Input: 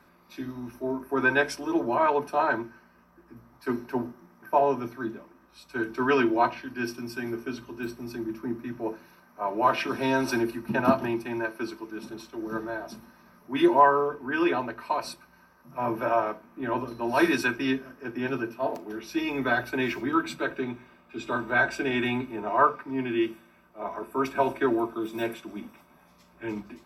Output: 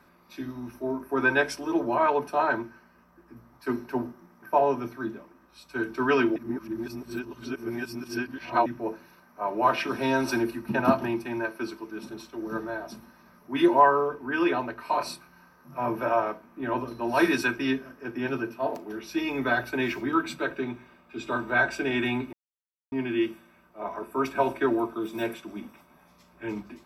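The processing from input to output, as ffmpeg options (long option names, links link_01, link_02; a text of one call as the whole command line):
ffmpeg -i in.wav -filter_complex "[0:a]asettb=1/sr,asplit=3[link_01][link_02][link_03];[link_01]atrim=end=14.824[link_04];[link_02]atrim=start=14.82:end=15.8,asetpts=PTS-STARTPTS,afade=type=in:duration=0.004:curve=qsin,afade=type=out:start_time=0.976:duration=0.004:curve=qsin,asplit=2[link_05][link_06];[link_06]adelay=28,volume=-2.5dB[link_07];[link_05][link_07]amix=inputs=2:normalize=0,atrim=end_sample=43218[link_08];[link_03]atrim=start=15.796[link_09];[link_04][link_08]acrossfade=duration=0.004:curve1=hsin:curve2=qsin[link_10];[link_10][link_09]acrossfade=duration=0.004:curve1=qsin:curve2=hsin,asplit=5[link_11][link_12][link_13][link_14][link_15];[link_11]atrim=end=6.362[link_16];[link_12]atrim=start=6.358:end=8.662,asetpts=PTS-STARTPTS,areverse[link_17];[link_13]atrim=start=8.658:end=22.33,asetpts=PTS-STARTPTS,afade=type=out:start_time=13.668:duration=0.004:curve=hsin[link_18];[link_14]atrim=start=22.33:end=22.92,asetpts=PTS-STARTPTS,volume=0[link_19];[link_15]atrim=start=22.92,asetpts=PTS-STARTPTS,afade=type=in:duration=0.004:curve=hsin[link_20];[link_16][link_17]acrossfade=duration=0.004:curve1=hsin:curve2=hsin[link_21];[link_18][link_19][link_20]concat=n=3:v=0:a=1[link_22];[link_21][link_22]acrossfade=duration=0.004:curve1=hsin:curve2=hsin" out.wav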